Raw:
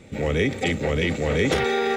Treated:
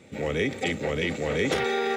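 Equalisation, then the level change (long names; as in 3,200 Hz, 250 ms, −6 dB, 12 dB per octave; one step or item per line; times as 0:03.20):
high-pass filter 170 Hz 6 dB per octave
−3.0 dB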